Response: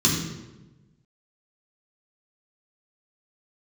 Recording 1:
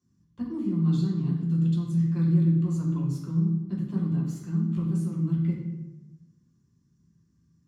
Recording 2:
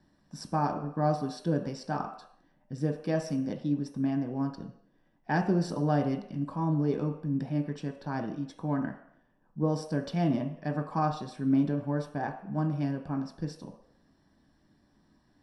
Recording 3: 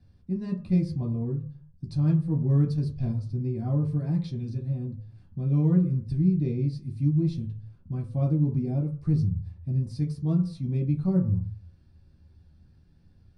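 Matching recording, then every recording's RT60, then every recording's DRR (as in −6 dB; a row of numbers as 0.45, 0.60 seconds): 1; 1.1 s, non-exponential decay, 0.45 s; −5.0, 2.5, −2.5 decibels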